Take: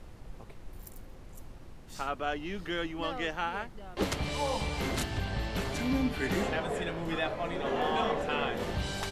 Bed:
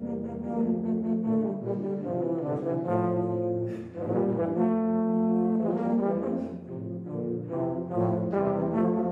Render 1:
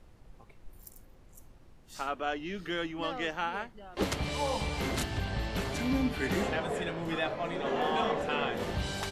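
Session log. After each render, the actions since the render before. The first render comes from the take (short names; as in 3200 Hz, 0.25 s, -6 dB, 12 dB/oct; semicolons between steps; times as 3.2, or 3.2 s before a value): noise print and reduce 8 dB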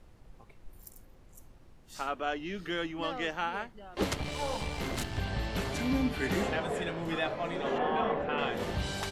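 4.14–5.18 half-wave gain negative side -7 dB; 7.78–8.38 LPF 2300 Hz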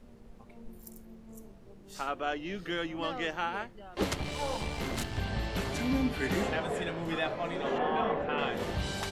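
add bed -24.5 dB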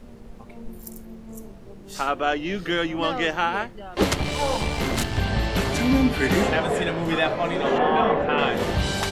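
gain +10 dB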